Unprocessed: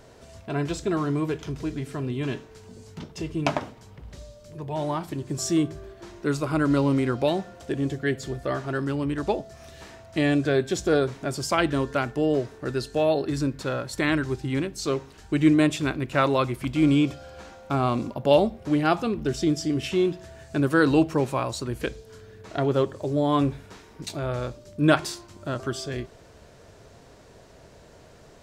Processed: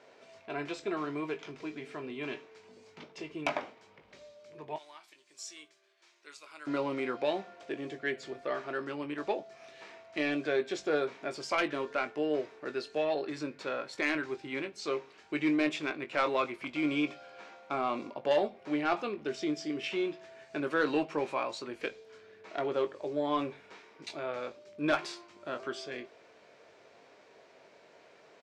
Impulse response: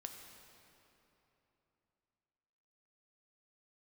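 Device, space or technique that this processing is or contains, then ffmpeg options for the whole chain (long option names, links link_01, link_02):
intercom: -filter_complex "[0:a]asettb=1/sr,asplit=3[link_01][link_02][link_03];[link_01]atrim=end=4.764[link_04];[link_02]atrim=start=4.76:end=6.67,asetpts=PTS-STARTPTS,afade=type=in:duration=0.004:curve=qsin,afade=type=out:start_time=1.906:duration=0.004:curve=qsin,aderivative[link_05];[link_03]atrim=start=6.666[link_06];[link_04][link_05]acrossfade=duration=0.004:curve1=hsin:curve2=qsin[link_07];[link_07][link_06]acrossfade=duration=0.004:curve1=qsin:curve2=hsin,highpass=370,lowpass=4600,equalizer=frequency=2300:width_type=o:width=0.33:gain=7,asoftclip=type=tanh:threshold=-13.5dB,asplit=2[link_08][link_09];[link_09]adelay=20,volume=-9dB[link_10];[link_08][link_10]amix=inputs=2:normalize=0,volume=-5.5dB"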